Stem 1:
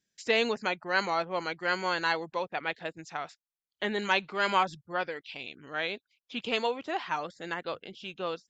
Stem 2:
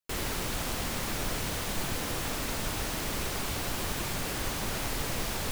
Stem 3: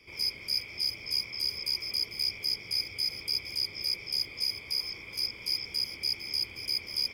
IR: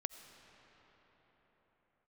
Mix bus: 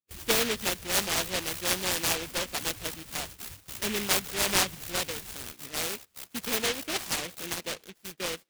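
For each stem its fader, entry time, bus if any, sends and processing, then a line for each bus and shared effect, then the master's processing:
-0.5 dB, 0.00 s, send -17.5 dB, dry
+0.5 dB, 0.00 s, no send, bell 4000 Hz +13 dB 0.93 oct; loudest bins only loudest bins 16; auto duck -10 dB, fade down 0.25 s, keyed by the first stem
-13.5 dB, 0.40 s, send -9 dB, dry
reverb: on, pre-delay 45 ms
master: gate -42 dBFS, range -17 dB; HPF 51 Hz; noise-modulated delay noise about 2500 Hz, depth 0.3 ms

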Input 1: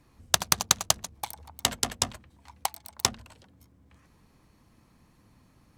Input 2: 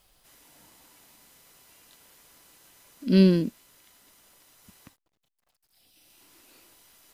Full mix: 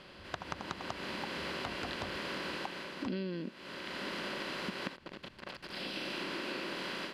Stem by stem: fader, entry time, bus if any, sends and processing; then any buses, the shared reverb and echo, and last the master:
-3.5 dB, 0.00 s, no send, auto duck -13 dB, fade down 1.10 s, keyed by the second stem
+2.0 dB, 0.00 s, no send, per-bin compression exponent 0.6; tilt +4.5 dB/oct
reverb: off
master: AGC gain up to 15.5 dB; LPF 1600 Hz 12 dB/oct; compressor 10:1, threshold -35 dBFS, peak gain reduction 20.5 dB

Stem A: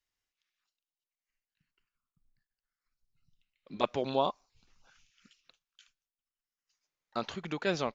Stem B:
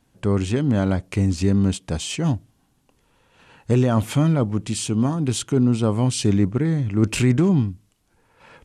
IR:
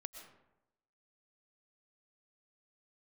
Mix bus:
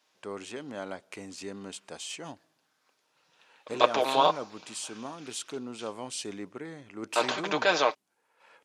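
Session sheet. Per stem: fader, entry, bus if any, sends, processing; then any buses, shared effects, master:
+2.5 dB, 0.00 s, muted 6.53–7.1, no send, per-bin compression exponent 0.6; comb 6.5 ms, depth 54%; three-band expander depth 40%
-10.0 dB, 0.00 s, send -18.5 dB, dry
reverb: on, RT60 0.90 s, pre-delay 80 ms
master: HPF 490 Hz 12 dB/oct

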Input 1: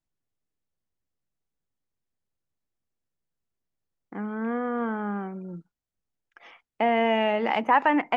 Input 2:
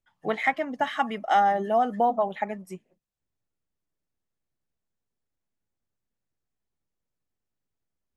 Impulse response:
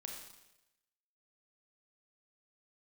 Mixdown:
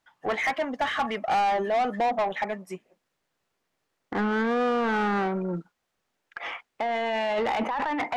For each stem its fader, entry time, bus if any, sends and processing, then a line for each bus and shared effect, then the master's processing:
-3.5 dB, 0.00 s, no send, negative-ratio compressor -30 dBFS, ratio -1
-7.5 dB, 0.00 s, no send, dry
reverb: off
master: overdrive pedal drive 24 dB, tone 2400 Hz, clips at -17 dBFS

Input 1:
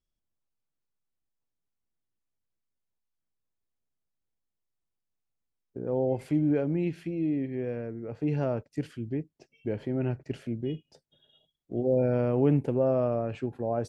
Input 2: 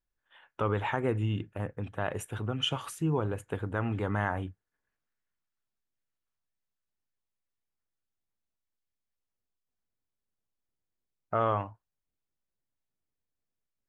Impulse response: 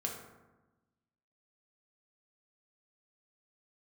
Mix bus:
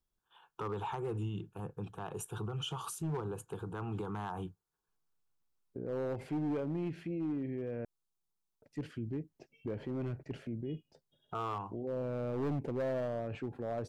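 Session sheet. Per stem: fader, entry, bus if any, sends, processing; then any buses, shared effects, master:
0.0 dB, 0.00 s, muted 7.85–8.62, no send, high shelf 4000 Hz -9.5 dB; auto duck -7 dB, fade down 1.05 s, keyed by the second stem
+1.5 dB, 0.00 s, no send, fixed phaser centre 390 Hz, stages 8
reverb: off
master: overloaded stage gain 24 dB; limiter -31 dBFS, peak gain reduction 7 dB

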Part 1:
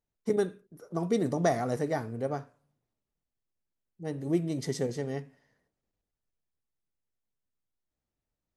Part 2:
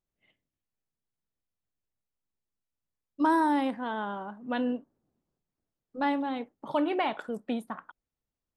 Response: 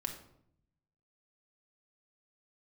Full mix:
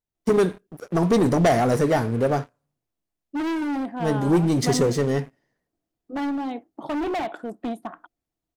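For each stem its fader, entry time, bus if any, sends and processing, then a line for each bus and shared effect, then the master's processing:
+2.0 dB, 0.00 s, no send, sample leveller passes 3
0.0 dB, 0.15 s, no send, small resonant body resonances 320/690 Hz, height 13 dB, ringing for 50 ms; hard clip -24 dBFS, distortion -4 dB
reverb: off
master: dry

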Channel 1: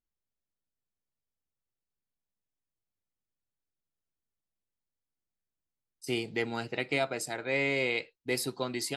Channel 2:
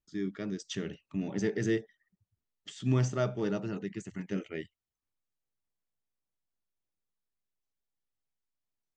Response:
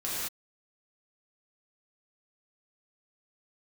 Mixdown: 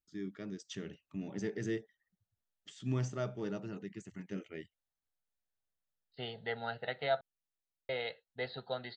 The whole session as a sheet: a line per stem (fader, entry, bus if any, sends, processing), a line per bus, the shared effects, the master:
-5.5 dB, 0.10 s, muted 7.21–7.89, no send, steep low-pass 4300 Hz 96 dB/oct; bell 980 Hz +6.5 dB 2.6 oct; fixed phaser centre 1600 Hz, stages 8
-7.0 dB, 0.00 s, no send, dry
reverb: off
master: dry

